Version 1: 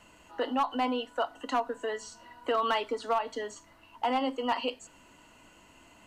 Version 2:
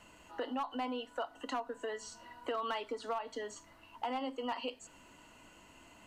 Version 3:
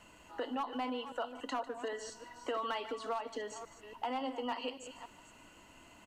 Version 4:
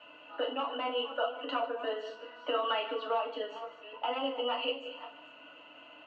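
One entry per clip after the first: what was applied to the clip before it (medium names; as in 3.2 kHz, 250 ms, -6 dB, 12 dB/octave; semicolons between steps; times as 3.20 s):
compression 2:1, threshold -38 dBFS, peak gain reduction 8.5 dB; trim -1.5 dB
chunks repeated in reverse 281 ms, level -11.5 dB; delay 149 ms -16 dB
cabinet simulation 340–3400 Hz, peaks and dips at 370 Hz -9 dB, 590 Hz +9 dB, 900 Hz -5 dB, 1.3 kHz +5 dB, 2 kHz -8 dB, 2.8 kHz +9 dB; FDN reverb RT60 0.34 s, low-frequency decay 1×, high-frequency decay 0.75×, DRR -2.5 dB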